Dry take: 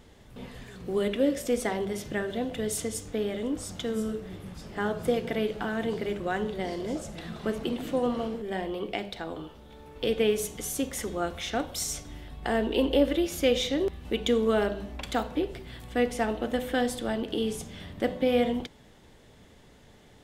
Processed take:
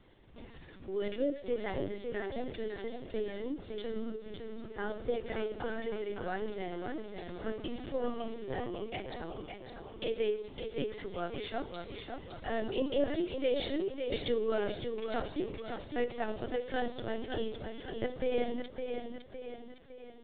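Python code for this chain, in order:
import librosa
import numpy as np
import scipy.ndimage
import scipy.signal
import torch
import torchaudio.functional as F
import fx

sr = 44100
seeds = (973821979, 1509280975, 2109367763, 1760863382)

p1 = x + fx.echo_feedback(x, sr, ms=557, feedback_pct=49, wet_db=-6.5, dry=0)
p2 = fx.lpc_vocoder(p1, sr, seeds[0], excitation='pitch_kept', order=16)
y = p2 * librosa.db_to_amplitude(-7.5)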